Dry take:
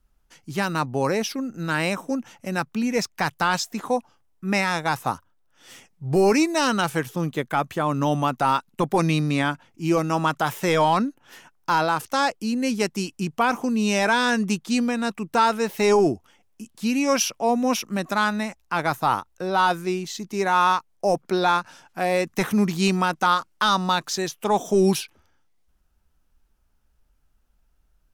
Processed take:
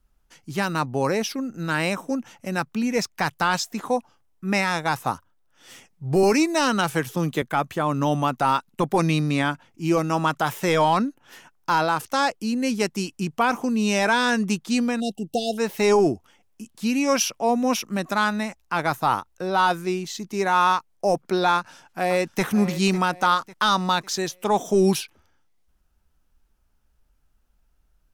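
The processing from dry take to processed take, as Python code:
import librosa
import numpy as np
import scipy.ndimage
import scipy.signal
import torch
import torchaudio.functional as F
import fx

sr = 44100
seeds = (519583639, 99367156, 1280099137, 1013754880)

y = fx.band_squash(x, sr, depth_pct=40, at=(6.23, 7.42))
y = fx.brickwall_bandstop(y, sr, low_hz=830.0, high_hz=2700.0, at=(15.0, 15.58))
y = fx.echo_throw(y, sr, start_s=21.55, length_s=0.88, ms=550, feedback_pct=40, wet_db=-14.0)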